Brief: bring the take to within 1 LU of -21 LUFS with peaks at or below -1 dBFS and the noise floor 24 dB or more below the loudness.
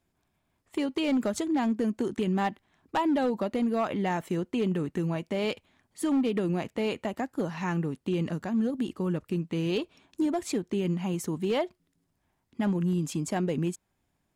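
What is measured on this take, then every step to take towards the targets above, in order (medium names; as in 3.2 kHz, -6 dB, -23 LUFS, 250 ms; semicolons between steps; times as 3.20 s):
clipped samples 1.0%; clipping level -21.0 dBFS; loudness -29.5 LUFS; peak level -21.0 dBFS; loudness target -21.0 LUFS
-> clip repair -21 dBFS; trim +8.5 dB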